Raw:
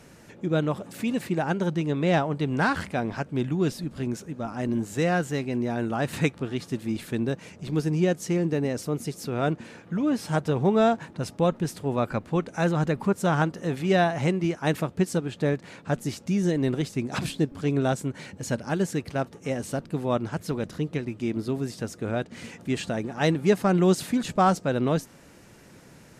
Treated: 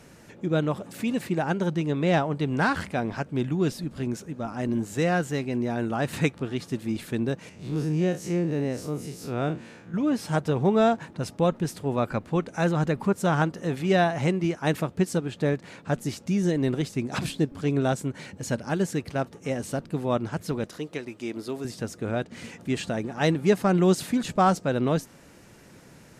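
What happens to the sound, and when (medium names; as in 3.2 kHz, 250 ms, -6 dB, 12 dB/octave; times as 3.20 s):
7.49–9.94 s: spectral blur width 85 ms
20.65–21.65 s: tone controls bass -13 dB, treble +3 dB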